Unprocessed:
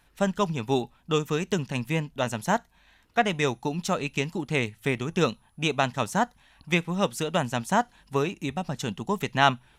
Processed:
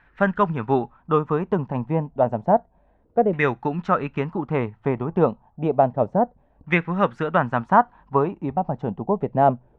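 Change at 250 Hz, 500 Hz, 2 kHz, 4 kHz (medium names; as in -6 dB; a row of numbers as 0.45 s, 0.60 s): +4.0 dB, +6.5 dB, +0.5 dB, under -10 dB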